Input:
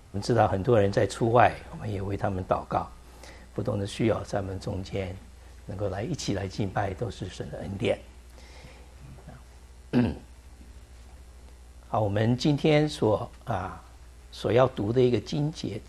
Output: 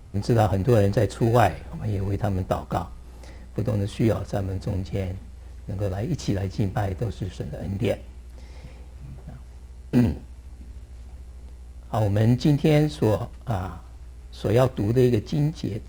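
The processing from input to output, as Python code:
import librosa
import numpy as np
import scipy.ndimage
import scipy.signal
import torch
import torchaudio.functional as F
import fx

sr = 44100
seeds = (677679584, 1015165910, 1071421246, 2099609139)

p1 = fx.low_shelf(x, sr, hz=260.0, db=8.5)
p2 = fx.sample_hold(p1, sr, seeds[0], rate_hz=2200.0, jitter_pct=0)
p3 = p1 + F.gain(torch.from_numpy(p2), -11.5).numpy()
y = F.gain(torch.from_numpy(p3), -2.5).numpy()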